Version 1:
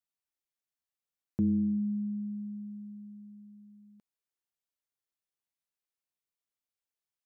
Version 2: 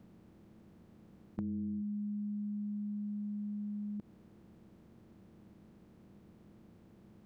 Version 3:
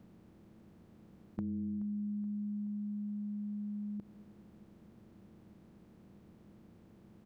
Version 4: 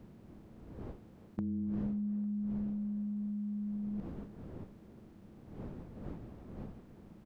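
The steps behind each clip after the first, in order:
spectral levelling over time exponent 0.4; compression 5:1, threshold -40 dBFS, peak gain reduction 14 dB; trim +2 dB
feedback delay 426 ms, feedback 56%, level -18 dB
wind noise 260 Hz -51 dBFS; speakerphone echo 350 ms, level -14 dB; trim +1.5 dB

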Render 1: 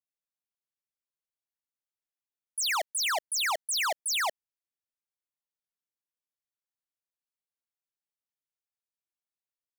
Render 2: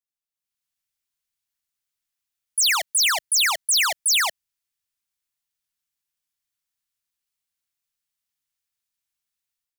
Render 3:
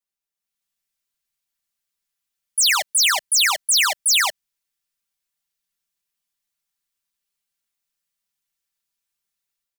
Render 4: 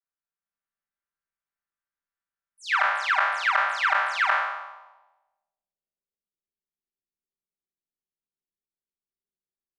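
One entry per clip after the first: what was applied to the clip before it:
peaking EQ 460 Hz -14.5 dB 2.3 oct; level rider gain up to 11 dB
comb 5.1 ms, depth 85%
spectral sustain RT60 1.10 s; low-pass sweep 1.5 kHz -> 370 Hz, 4.36–6.56 s; trim -9 dB

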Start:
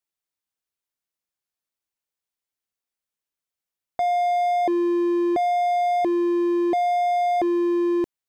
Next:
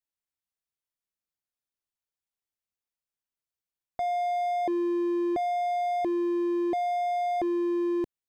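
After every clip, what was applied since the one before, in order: bass shelf 160 Hz +7 dB; trim -7 dB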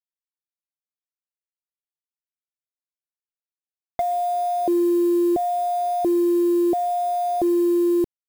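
low-pass that closes with the level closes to 660 Hz, closed at -28 dBFS; feedback echo behind a high-pass 123 ms, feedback 55%, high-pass 3.1 kHz, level -13 dB; word length cut 8-bit, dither none; trim +8.5 dB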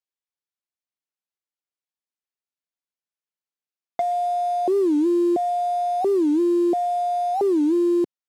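band-pass 170–7200 Hz; warped record 45 rpm, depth 250 cents

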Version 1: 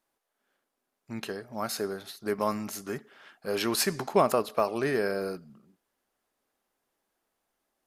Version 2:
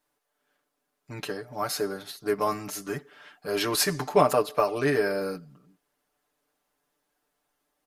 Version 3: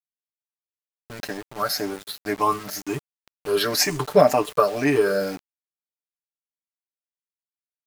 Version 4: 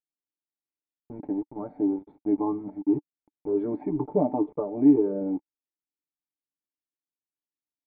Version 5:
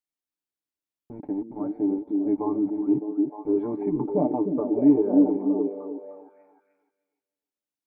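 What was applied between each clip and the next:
comb 6.8 ms, depth 96%
drifting ripple filter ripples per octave 0.66, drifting +2 Hz, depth 12 dB; small samples zeroed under -36.5 dBFS; trim +2.5 dB
in parallel at -2 dB: compression, threshold -26 dBFS, peak gain reduction 16 dB; on the sum: cascade formant filter u; trim +4.5 dB
repeats whose band climbs or falls 305 ms, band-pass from 260 Hz, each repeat 0.7 oct, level -0.5 dB

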